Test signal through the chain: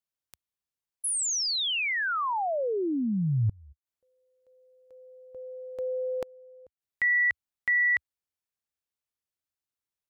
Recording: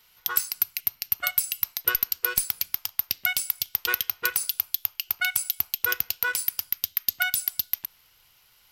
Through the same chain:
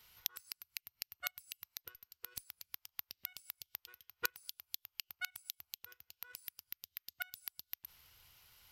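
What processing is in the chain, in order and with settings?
bell 75 Hz +9 dB 1.3 oct; flipped gate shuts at -15 dBFS, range -30 dB; gain -4.5 dB

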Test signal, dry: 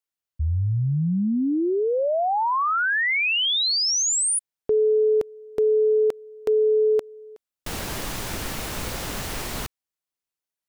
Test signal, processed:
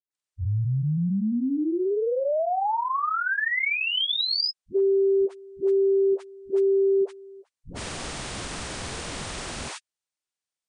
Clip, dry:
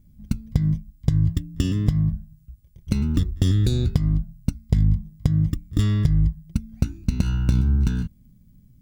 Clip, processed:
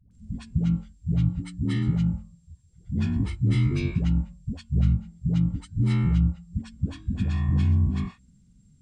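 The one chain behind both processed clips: inharmonic rescaling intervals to 82%; dispersion highs, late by 0.111 s, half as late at 420 Hz; gain -1.5 dB

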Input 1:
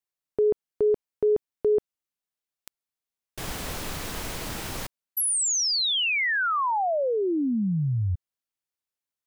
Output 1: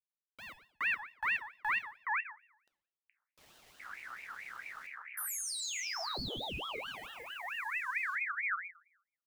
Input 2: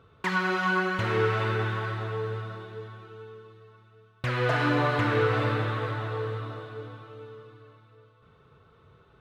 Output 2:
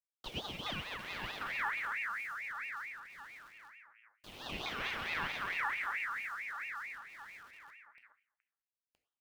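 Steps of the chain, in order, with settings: Wiener smoothing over 41 samples; bit-crush 8-bit; bands offset in time highs, lows 0.42 s, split 670 Hz; plate-style reverb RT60 0.66 s, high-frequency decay 0.9×, DRR 5.5 dB; ring modulator with a swept carrier 1800 Hz, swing 30%, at 4.5 Hz; gain -9 dB

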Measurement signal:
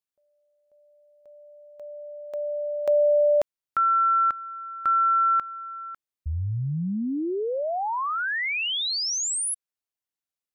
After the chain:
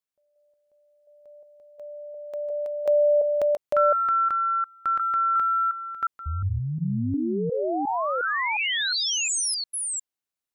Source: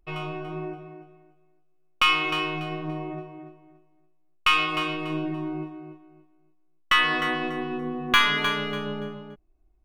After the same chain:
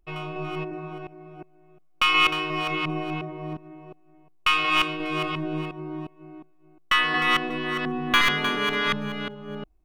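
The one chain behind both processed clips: reverse delay 0.357 s, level -1 dB; gain -1 dB

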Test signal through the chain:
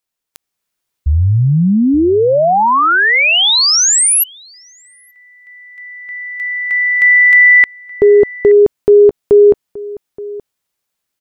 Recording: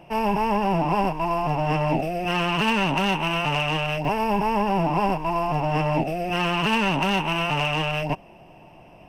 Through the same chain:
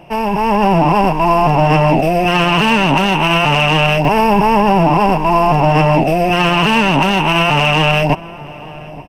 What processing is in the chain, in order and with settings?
limiter -16.5 dBFS; AGC gain up to 6 dB; outdoor echo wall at 150 m, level -18 dB; gain +7.5 dB

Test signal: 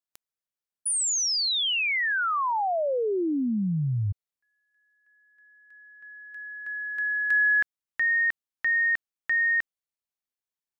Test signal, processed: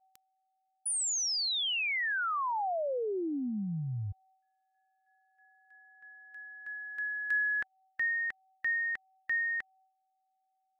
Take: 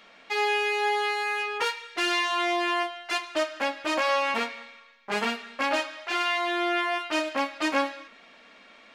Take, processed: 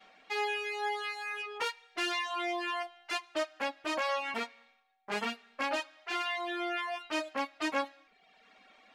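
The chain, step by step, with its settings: whine 760 Hz -56 dBFS; reverb removal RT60 1 s; expander -56 dBFS, range -15 dB; gain -6 dB

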